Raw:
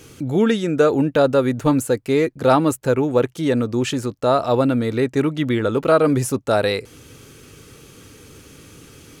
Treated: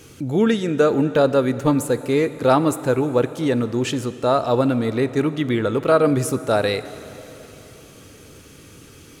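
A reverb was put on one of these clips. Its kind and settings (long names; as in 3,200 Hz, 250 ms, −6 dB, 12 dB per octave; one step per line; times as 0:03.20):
dense smooth reverb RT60 3.7 s, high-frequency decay 0.8×, DRR 13 dB
level −1 dB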